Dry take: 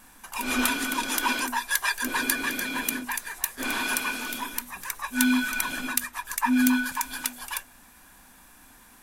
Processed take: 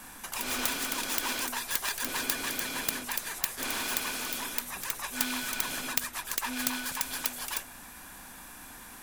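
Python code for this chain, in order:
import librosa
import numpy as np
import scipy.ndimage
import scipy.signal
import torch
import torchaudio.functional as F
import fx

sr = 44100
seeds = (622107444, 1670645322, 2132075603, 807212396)

y = fx.self_delay(x, sr, depth_ms=0.13)
y = fx.spectral_comp(y, sr, ratio=2.0)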